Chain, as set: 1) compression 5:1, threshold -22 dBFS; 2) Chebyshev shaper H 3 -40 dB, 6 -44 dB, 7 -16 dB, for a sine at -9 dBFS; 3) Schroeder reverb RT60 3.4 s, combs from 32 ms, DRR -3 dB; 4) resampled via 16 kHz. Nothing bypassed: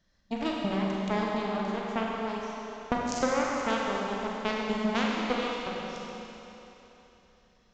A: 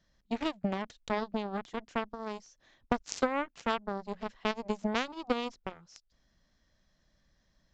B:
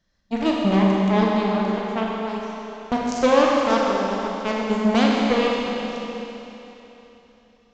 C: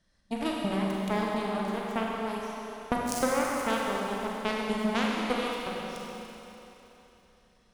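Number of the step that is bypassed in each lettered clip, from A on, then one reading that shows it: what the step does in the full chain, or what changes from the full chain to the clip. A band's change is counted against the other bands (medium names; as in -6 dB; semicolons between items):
3, crest factor change +5.0 dB; 1, mean gain reduction 2.0 dB; 4, 8 kHz band +3.0 dB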